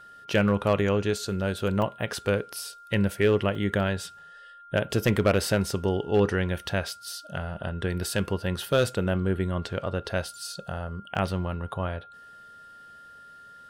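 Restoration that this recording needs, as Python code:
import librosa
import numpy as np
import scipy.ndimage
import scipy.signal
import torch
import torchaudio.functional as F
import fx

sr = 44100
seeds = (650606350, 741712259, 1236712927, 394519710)

y = fx.fix_declip(x, sr, threshold_db=-13.5)
y = fx.notch(y, sr, hz=1400.0, q=30.0)
y = fx.fix_interpolate(y, sr, at_s=(1.82, 3.55, 11.15), length_ms=2.2)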